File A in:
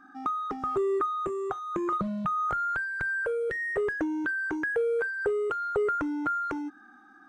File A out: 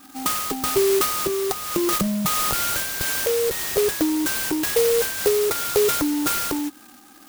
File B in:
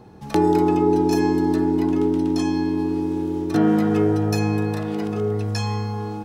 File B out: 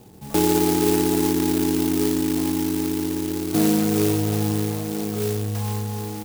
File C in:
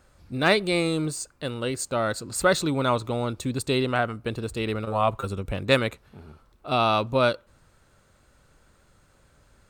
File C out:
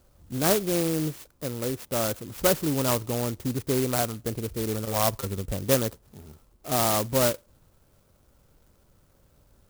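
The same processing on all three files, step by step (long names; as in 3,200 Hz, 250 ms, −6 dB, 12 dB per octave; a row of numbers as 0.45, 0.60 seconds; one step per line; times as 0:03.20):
high-shelf EQ 2,600 Hz −12 dB
converter with an unsteady clock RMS 0.14 ms
normalise the peak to −9 dBFS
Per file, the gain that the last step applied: +8.5, −1.0, −0.5 decibels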